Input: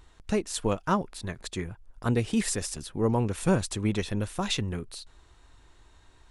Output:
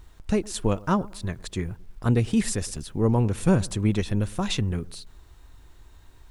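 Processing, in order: low shelf 240 Hz +7.5 dB; analogue delay 0.111 s, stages 1024, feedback 36%, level -22 dB; bit-crush 11-bit

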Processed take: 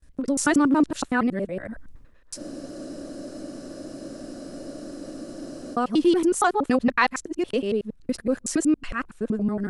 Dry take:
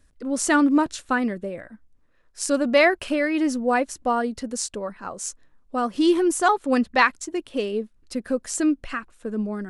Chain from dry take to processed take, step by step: local time reversal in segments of 93 ms; in parallel at 0 dB: compressor, threshold -26 dBFS, peak gain reduction 13 dB; on the sum: low shelf 390 Hz +4 dB; gate with hold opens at -46 dBFS; reverse; upward compressor, threshold -25 dBFS; reverse; spectral freeze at 2.39, 3.35 s; gain -5 dB

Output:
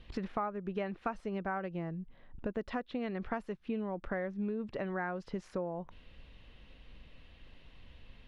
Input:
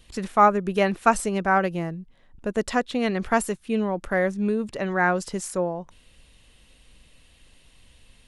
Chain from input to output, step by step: compressor 5:1, threshold -35 dBFS, peak gain reduction 21 dB; air absorption 280 m; gain +1 dB

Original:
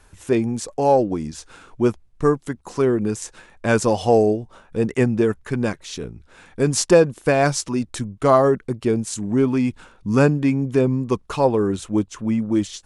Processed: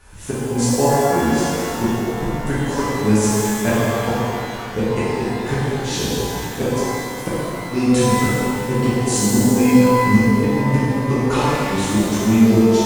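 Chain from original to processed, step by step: flipped gate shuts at -11 dBFS, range -38 dB; shimmer reverb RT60 2.5 s, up +12 st, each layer -8 dB, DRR -11 dB

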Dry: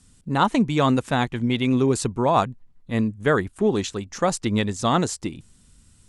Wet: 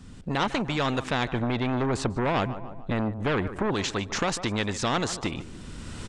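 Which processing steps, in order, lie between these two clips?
recorder AGC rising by 17 dB/s; 1.32–3.74 tilt shelf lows +7 dB; soft clip -13.5 dBFS, distortion -12 dB; tape spacing loss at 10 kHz 23 dB; feedback echo 0.147 s, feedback 38%, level -23 dB; spectral compressor 2:1

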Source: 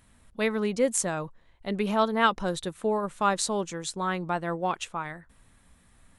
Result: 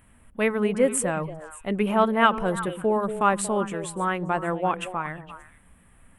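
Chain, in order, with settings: band shelf 5000 Hz -14.5 dB 1.1 oct; delay with a stepping band-pass 0.116 s, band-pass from 180 Hz, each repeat 1.4 oct, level -6 dB; gain +3.5 dB

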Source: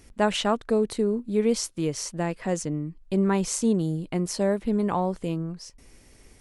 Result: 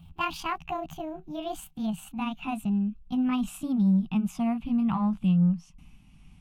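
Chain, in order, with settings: gliding pitch shift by +9 st ending unshifted; EQ curve 120 Hz 0 dB, 170 Hz +12 dB, 490 Hz -29 dB, 770 Hz -5 dB, 1200 Hz -5 dB, 1900 Hz -16 dB, 2700 Hz +2 dB, 4800 Hz -16 dB; in parallel at -10 dB: soft clip -25.5 dBFS, distortion -12 dB

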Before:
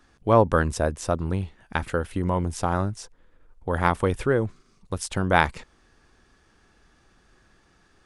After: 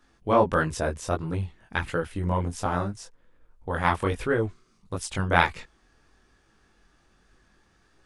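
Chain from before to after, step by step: chorus voices 2, 1.5 Hz, delay 21 ms, depth 3 ms; dynamic EQ 2600 Hz, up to +5 dB, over -41 dBFS, Q 0.73

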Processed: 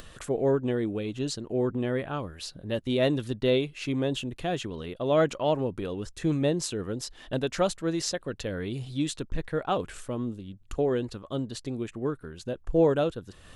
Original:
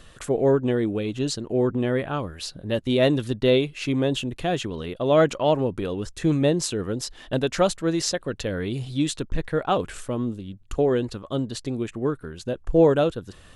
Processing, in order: upward compressor, threshold -34 dBFS; gain -5 dB

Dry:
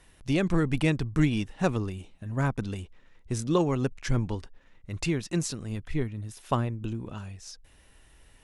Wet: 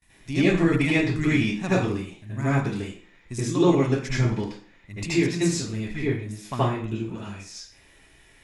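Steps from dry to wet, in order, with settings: gate with hold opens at -48 dBFS; reverb RT60 0.45 s, pre-delay 72 ms, DRR -10.5 dB; gain -2.5 dB

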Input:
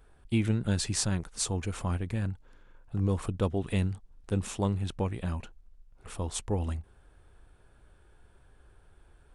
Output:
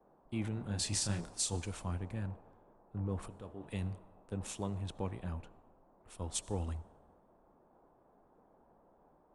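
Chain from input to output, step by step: limiter -22 dBFS, peak gain reduction 9 dB; 3.28–3.68 resonator 73 Hz, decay 0.5 s, harmonics all, mix 60%; band noise 130–940 Hz -49 dBFS; 0.54–1.57 doubler 29 ms -5 dB; reverb RT60 1.6 s, pre-delay 40 ms, DRR 19.5 dB; three-band expander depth 70%; gain -7.5 dB

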